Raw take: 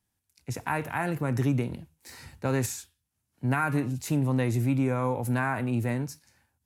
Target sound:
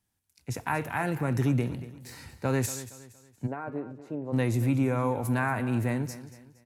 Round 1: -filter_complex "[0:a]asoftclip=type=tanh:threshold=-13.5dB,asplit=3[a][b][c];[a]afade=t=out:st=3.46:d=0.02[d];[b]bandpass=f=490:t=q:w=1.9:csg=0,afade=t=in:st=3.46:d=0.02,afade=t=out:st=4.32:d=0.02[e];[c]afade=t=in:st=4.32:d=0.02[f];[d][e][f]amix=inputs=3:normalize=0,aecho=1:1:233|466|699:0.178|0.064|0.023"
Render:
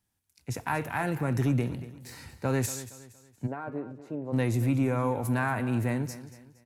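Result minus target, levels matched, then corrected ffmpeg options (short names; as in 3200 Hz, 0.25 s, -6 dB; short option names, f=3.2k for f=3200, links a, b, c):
soft clip: distortion +16 dB
-filter_complex "[0:a]asoftclip=type=tanh:threshold=-5dB,asplit=3[a][b][c];[a]afade=t=out:st=3.46:d=0.02[d];[b]bandpass=f=490:t=q:w=1.9:csg=0,afade=t=in:st=3.46:d=0.02,afade=t=out:st=4.32:d=0.02[e];[c]afade=t=in:st=4.32:d=0.02[f];[d][e][f]amix=inputs=3:normalize=0,aecho=1:1:233|466|699:0.178|0.064|0.023"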